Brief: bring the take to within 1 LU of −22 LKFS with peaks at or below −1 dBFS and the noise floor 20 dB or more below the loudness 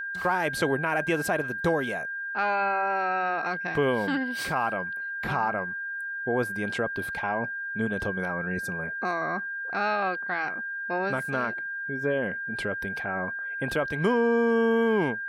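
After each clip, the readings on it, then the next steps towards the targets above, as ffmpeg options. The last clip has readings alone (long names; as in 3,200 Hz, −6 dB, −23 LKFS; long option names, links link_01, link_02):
interfering tone 1,600 Hz; level of the tone −31 dBFS; integrated loudness −27.5 LKFS; sample peak −13.0 dBFS; target loudness −22.0 LKFS
→ -af "bandreject=frequency=1600:width=30"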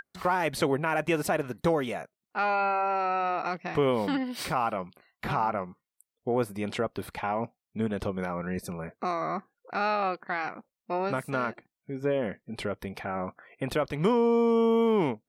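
interfering tone none found; integrated loudness −29.0 LKFS; sample peak −14.5 dBFS; target loudness −22.0 LKFS
→ -af "volume=7dB"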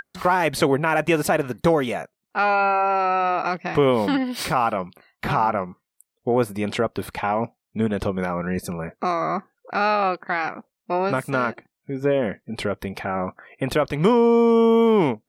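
integrated loudness −22.0 LKFS; sample peak −7.5 dBFS; background noise floor −83 dBFS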